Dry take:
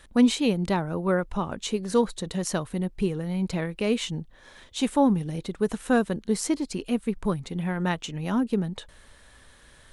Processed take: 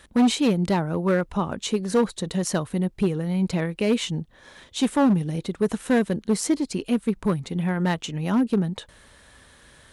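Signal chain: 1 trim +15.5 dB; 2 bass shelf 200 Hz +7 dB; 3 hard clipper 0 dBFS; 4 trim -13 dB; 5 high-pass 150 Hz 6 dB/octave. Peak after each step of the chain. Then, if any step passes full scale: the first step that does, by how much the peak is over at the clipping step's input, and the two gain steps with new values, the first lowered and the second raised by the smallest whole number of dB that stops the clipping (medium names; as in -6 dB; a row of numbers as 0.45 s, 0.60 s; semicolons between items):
+7.5 dBFS, +9.5 dBFS, 0.0 dBFS, -13.0 dBFS, -10.0 dBFS; step 1, 9.5 dB; step 1 +5.5 dB, step 4 -3 dB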